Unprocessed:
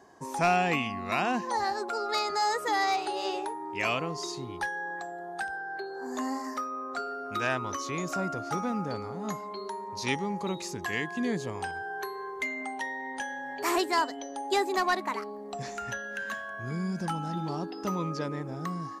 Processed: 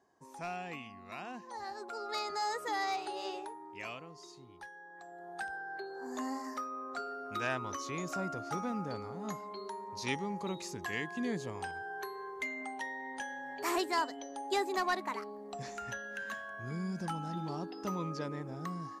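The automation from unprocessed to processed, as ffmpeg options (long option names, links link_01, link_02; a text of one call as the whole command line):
ffmpeg -i in.wav -af "volume=4dB,afade=type=in:start_time=1.48:duration=0.73:silence=0.375837,afade=type=out:start_time=3.21:duration=0.82:silence=0.334965,afade=type=in:start_time=4.92:duration=0.53:silence=0.266073" out.wav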